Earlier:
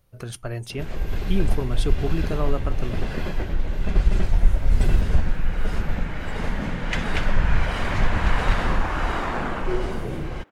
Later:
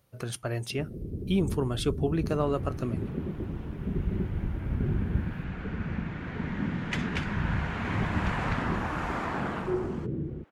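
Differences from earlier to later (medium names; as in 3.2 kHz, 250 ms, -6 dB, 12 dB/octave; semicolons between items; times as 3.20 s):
first sound: add inverse Chebyshev low-pass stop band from 1 kHz, stop band 50 dB; second sound -5.0 dB; master: add high-pass 100 Hz 12 dB/octave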